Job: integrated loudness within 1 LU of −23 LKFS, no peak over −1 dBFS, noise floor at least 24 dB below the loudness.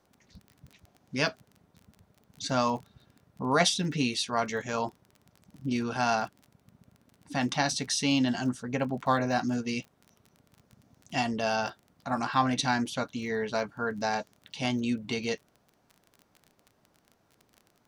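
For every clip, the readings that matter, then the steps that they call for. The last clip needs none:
crackle rate 23 per second; integrated loudness −30.0 LKFS; sample peak −10.5 dBFS; target loudness −23.0 LKFS
→ click removal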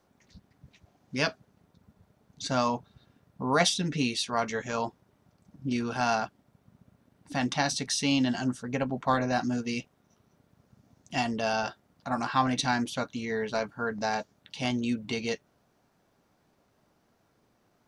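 crackle rate 0 per second; integrated loudness −30.0 LKFS; sample peak −10.5 dBFS; target loudness −23.0 LKFS
→ level +7 dB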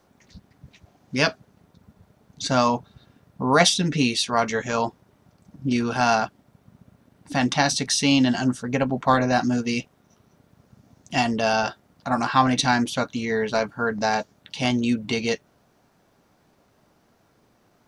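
integrated loudness −23.0 LKFS; sample peak −3.5 dBFS; background noise floor −63 dBFS

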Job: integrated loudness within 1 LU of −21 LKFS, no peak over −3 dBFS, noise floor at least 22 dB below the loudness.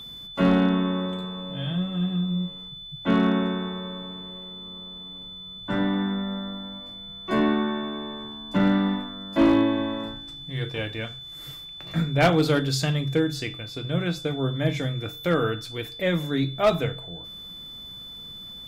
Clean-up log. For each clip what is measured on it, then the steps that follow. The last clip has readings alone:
share of clipped samples 0.3%; peaks flattened at −13.0 dBFS; interfering tone 3,500 Hz; level of the tone −38 dBFS; integrated loudness −25.5 LKFS; sample peak −13.0 dBFS; target loudness −21.0 LKFS
→ clipped peaks rebuilt −13 dBFS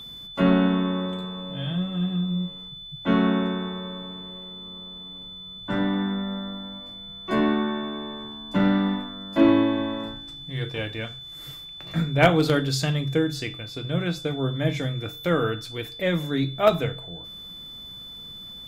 share of clipped samples 0.0%; interfering tone 3,500 Hz; level of the tone −38 dBFS
→ notch filter 3,500 Hz, Q 30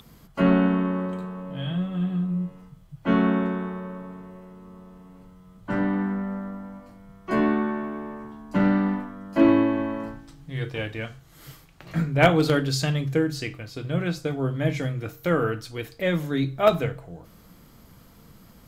interfering tone none found; integrated loudness −25.0 LKFS; sample peak −4.0 dBFS; target loudness −21.0 LKFS
→ level +4 dB
brickwall limiter −3 dBFS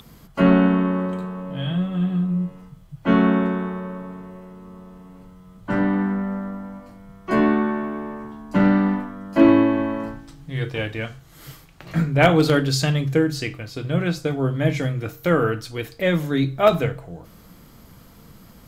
integrated loudness −21.5 LKFS; sample peak −3.0 dBFS; background noise floor −48 dBFS

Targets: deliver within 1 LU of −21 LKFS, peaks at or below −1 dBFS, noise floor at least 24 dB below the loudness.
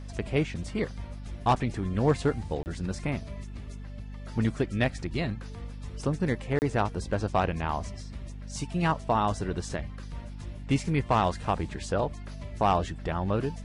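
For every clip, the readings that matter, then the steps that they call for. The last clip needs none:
number of dropouts 2; longest dropout 29 ms; mains hum 50 Hz; hum harmonics up to 250 Hz; level of the hum −37 dBFS; integrated loudness −29.5 LKFS; sample peak −13.0 dBFS; target loudness −21.0 LKFS
→ repair the gap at 0:02.63/0:06.59, 29 ms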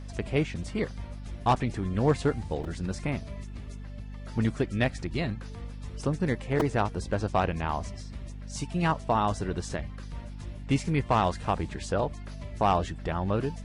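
number of dropouts 0; mains hum 50 Hz; hum harmonics up to 250 Hz; level of the hum −37 dBFS
→ hum removal 50 Hz, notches 5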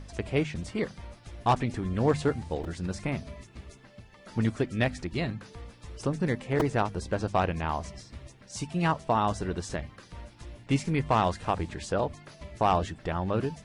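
mains hum none found; integrated loudness −30.0 LKFS; sample peak −12.5 dBFS; target loudness −21.0 LKFS
→ level +9 dB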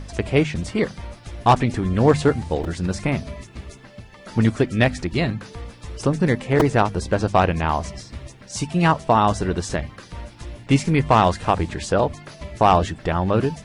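integrated loudness −21.0 LKFS; sample peak −3.5 dBFS; background noise floor −45 dBFS

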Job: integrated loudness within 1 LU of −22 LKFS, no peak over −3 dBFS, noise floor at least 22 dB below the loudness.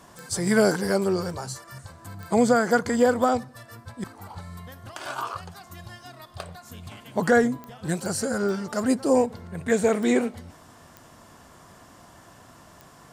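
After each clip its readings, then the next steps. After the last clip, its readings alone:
number of clicks 8; integrated loudness −24.0 LKFS; sample peak −8.5 dBFS; target loudness −22.0 LKFS
→ click removal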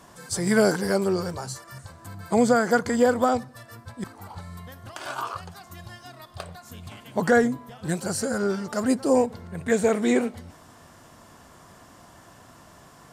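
number of clicks 0; integrated loudness −24.0 LKFS; sample peak −8.5 dBFS; target loudness −22.0 LKFS
→ level +2 dB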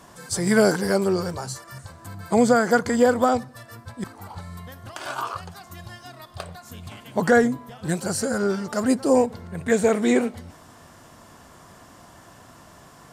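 integrated loudness −22.0 LKFS; sample peak −6.5 dBFS; background noise floor −49 dBFS

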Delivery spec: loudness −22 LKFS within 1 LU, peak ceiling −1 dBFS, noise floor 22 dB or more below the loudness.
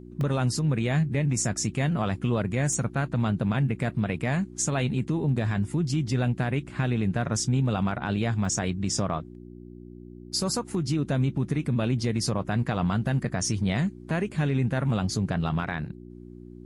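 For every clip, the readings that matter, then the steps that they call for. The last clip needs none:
number of dropouts 3; longest dropout 1.6 ms; mains hum 60 Hz; hum harmonics up to 360 Hz; level of the hum −44 dBFS; integrated loudness −27.0 LKFS; sample peak −16.0 dBFS; target loudness −22.0 LKFS
→ repair the gap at 0:00.21/0:02.73/0:08.45, 1.6 ms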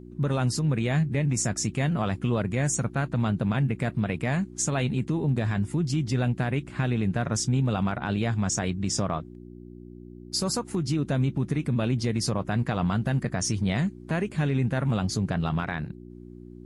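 number of dropouts 0; mains hum 60 Hz; hum harmonics up to 360 Hz; level of the hum −44 dBFS
→ hum removal 60 Hz, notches 6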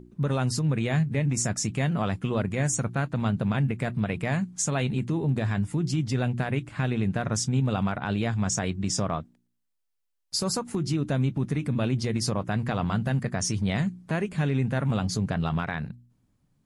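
mains hum none found; integrated loudness −27.5 LKFS; sample peak −15.0 dBFS; target loudness −22.0 LKFS
→ level +5.5 dB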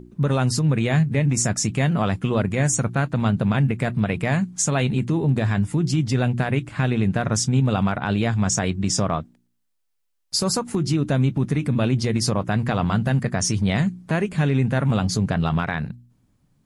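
integrated loudness −22.0 LKFS; sample peak −9.5 dBFS; background noise floor −70 dBFS

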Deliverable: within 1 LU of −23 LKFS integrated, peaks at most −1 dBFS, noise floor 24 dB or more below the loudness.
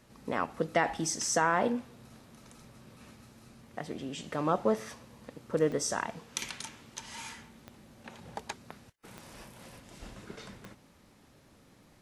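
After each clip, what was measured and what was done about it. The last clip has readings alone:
number of clicks 4; integrated loudness −32.5 LKFS; sample peak −13.0 dBFS; target loudness −23.0 LKFS
→ click removal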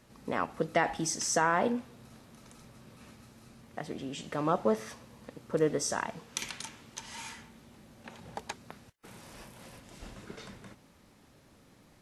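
number of clicks 0; integrated loudness −32.5 LKFS; sample peak −13.0 dBFS; target loudness −23.0 LKFS
→ level +9.5 dB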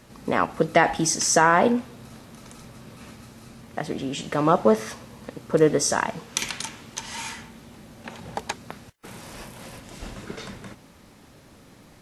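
integrated loudness −23.0 LKFS; sample peak −3.5 dBFS; background noise floor −51 dBFS

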